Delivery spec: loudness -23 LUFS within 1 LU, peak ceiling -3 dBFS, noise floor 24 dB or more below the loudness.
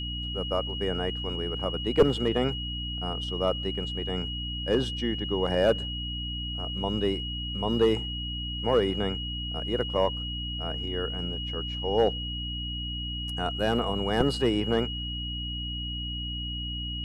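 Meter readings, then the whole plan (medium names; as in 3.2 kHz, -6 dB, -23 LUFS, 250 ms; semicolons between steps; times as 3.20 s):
hum 60 Hz; highest harmonic 300 Hz; hum level -33 dBFS; steady tone 2.9 kHz; tone level -34 dBFS; loudness -29.0 LUFS; peak level -9.5 dBFS; loudness target -23.0 LUFS
-> de-hum 60 Hz, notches 5; band-stop 2.9 kHz, Q 30; trim +6 dB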